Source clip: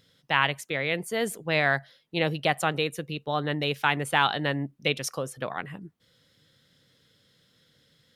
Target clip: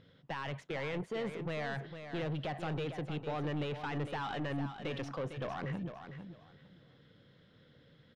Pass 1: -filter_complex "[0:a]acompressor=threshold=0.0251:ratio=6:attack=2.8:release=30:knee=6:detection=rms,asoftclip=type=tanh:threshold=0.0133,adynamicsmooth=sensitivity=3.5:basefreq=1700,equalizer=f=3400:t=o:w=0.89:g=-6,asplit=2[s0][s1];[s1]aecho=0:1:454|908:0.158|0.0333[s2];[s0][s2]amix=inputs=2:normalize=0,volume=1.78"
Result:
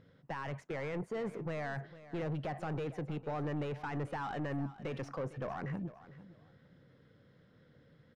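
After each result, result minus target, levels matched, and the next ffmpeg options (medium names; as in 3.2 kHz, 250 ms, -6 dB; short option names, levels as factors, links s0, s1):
4 kHz band -8.0 dB; echo-to-direct -7 dB
-filter_complex "[0:a]acompressor=threshold=0.0251:ratio=6:attack=2.8:release=30:knee=6:detection=rms,asoftclip=type=tanh:threshold=0.0133,adynamicsmooth=sensitivity=3.5:basefreq=1700,equalizer=f=3400:t=o:w=0.89:g=4,asplit=2[s0][s1];[s1]aecho=0:1:454|908:0.158|0.0333[s2];[s0][s2]amix=inputs=2:normalize=0,volume=1.78"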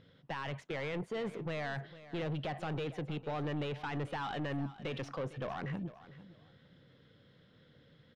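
echo-to-direct -7 dB
-filter_complex "[0:a]acompressor=threshold=0.0251:ratio=6:attack=2.8:release=30:knee=6:detection=rms,asoftclip=type=tanh:threshold=0.0133,adynamicsmooth=sensitivity=3.5:basefreq=1700,equalizer=f=3400:t=o:w=0.89:g=4,asplit=2[s0][s1];[s1]aecho=0:1:454|908|1362:0.355|0.0745|0.0156[s2];[s0][s2]amix=inputs=2:normalize=0,volume=1.78"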